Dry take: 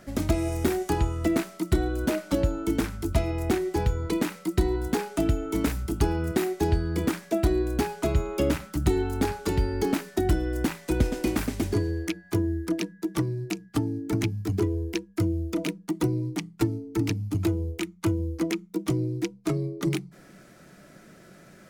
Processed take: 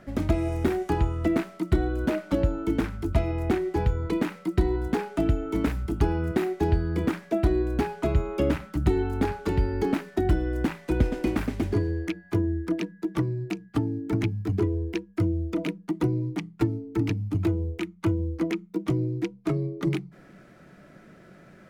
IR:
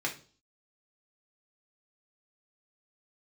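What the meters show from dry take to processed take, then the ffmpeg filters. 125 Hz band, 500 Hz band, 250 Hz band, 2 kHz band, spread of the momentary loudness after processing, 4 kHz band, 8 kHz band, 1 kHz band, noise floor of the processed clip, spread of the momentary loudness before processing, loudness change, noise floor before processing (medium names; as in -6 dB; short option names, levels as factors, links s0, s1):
+1.0 dB, 0.0 dB, +0.5 dB, -1.0 dB, 4 LU, -5.0 dB, -11.0 dB, 0.0 dB, -52 dBFS, 4 LU, +0.5 dB, -52 dBFS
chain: -af "bass=f=250:g=1,treble=f=4000:g=-12"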